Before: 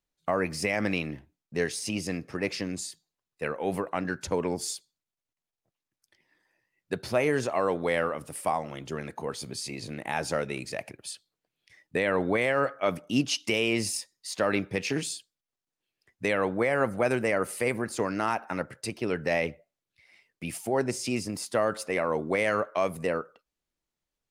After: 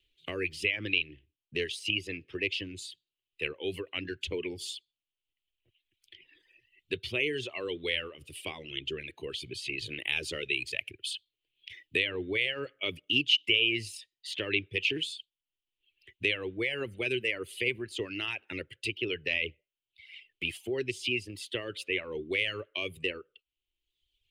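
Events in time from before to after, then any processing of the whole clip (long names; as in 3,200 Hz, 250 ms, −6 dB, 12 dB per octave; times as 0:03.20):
0:09.78–0:12.05: high-shelf EQ 3,700 Hz +9 dB
whole clip: reverb reduction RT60 1.1 s; drawn EQ curve 100 Hz 0 dB, 200 Hz −16 dB, 380 Hz 0 dB, 730 Hz −23 dB, 1,400 Hz −16 dB, 3,000 Hz +14 dB, 5,400 Hz −12 dB; multiband upward and downward compressor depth 40%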